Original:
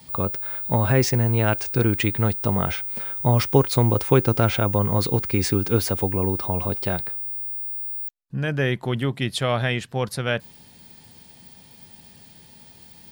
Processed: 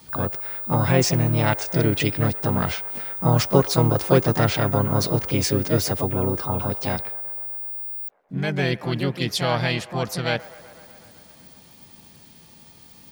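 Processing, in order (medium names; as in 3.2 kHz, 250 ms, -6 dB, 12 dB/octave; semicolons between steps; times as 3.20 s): feedback echo behind a band-pass 125 ms, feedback 77%, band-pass 880 Hz, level -18 dB; harmony voices +5 st -4 dB; dynamic bell 5.3 kHz, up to +5 dB, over -44 dBFS, Q 1.8; trim -1.5 dB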